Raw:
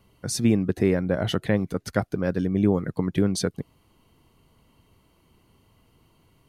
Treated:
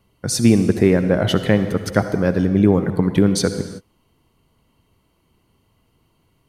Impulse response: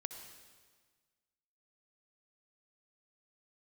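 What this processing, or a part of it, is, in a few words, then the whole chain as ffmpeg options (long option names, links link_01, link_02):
keyed gated reverb: -filter_complex "[0:a]asplit=3[link_01][link_02][link_03];[1:a]atrim=start_sample=2205[link_04];[link_02][link_04]afir=irnorm=-1:irlink=0[link_05];[link_03]apad=whole_len=286097[link_06];[link_05][link_06]sidechaingate=range=-33dB:threshold=-49dB:ratio=16:detection=peak,volume=8dB[link_07];[link_01][link_07]amix=inputs=2:normalize=0,volume=-2dB"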